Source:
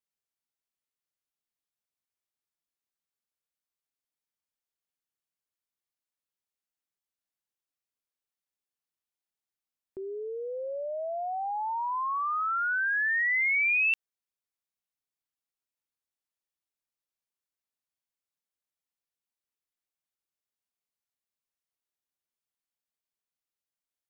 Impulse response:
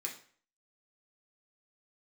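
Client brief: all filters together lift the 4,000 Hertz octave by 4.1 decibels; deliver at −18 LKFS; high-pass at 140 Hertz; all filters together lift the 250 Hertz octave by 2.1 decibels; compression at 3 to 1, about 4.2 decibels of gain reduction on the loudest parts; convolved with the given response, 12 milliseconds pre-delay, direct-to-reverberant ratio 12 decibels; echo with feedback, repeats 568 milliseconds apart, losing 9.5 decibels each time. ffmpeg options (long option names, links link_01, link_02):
-filter_complex "[0:a]highpass=140,equalizer=frequency=250:width_type=o:gain=5.5,equalizer=frequency=4000:width_type=o:gain=7,acompressor=threshold=-27dB:ratio=3,aecho=1:1:568|1136|1704|2272:0.335|0.111|0.0365|0.012,asplit=2[link_01][link_02];[1:a]atrim=start_sample=2205,adelay=12[link_03];[link_02][link_03]afir=irnorm=-1:irlink=0,volume=-12dB[link_04];[link_01][link_04]amix=inputs=2:normalize=0,volume=10.5dB"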